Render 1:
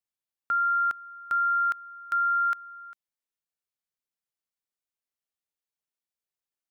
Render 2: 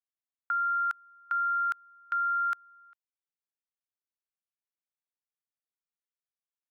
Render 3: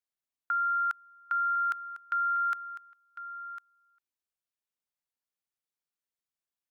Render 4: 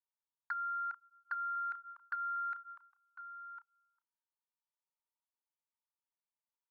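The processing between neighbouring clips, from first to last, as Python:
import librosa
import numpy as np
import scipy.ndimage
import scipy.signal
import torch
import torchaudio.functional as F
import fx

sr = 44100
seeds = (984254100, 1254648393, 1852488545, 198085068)

y1 = scipy.signal.sosfilt(scipy.signal.butter(4, 760.0, 'highpass', fs=sr, output='sos'), x)
y1 = fx.env_lowpass(y1, sr, base_hz=2100.0, full_db=-24.0)
y1 = fx.level_steps(y1, sr, step_db=14)
y2 = y1 + 10.0 ** (-13.0 / 20.0) * np.pad(y1, (int(1052 * sr / 1000.0), 0))[:len(y1)]
y3 = fx.bandpass_q(y2, sr, hz=950.0, q=4.6)
y3 = fx.doubler(y3, sr, ms=32.0, db=-12.5)
y3 = fx.env_flanger(y3, sr, rest_ms=3.3, full_db=-37.0)
y3 = y3 * 10.0 ** (6.5 / 20.0)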